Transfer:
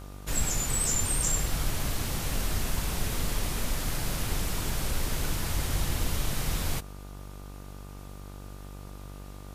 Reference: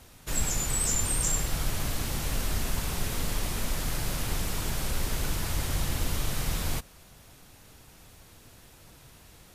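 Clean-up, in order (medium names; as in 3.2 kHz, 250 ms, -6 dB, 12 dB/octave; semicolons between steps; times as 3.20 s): de-hum 48.8 Hz, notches 31; band-stop 1.2 kHz, Q 30; interpolate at 0.75/1.97 s, 1.1 ms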